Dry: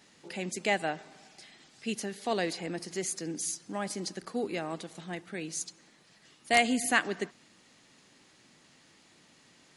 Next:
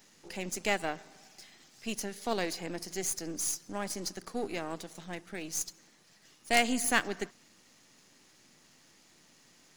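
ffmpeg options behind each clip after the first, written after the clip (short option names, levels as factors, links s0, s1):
-af "aeval=exprs='if(lt(val(0),0),0.447*val(0),val(0))':c=same,aexciter=amount=2.1:drive=2.5:freq=5200"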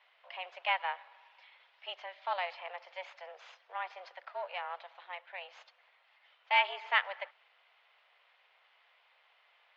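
-af "highpass=f=480:t=q:w=0.5412,highpass=f=480:t=q:w=1.307,lowpass=f=3200:t=q:w=0.5176,lowpass=f=3200:t=q:w=0.7071,lowpass=f=3200:t=q:w=1.932,afreqshift=180"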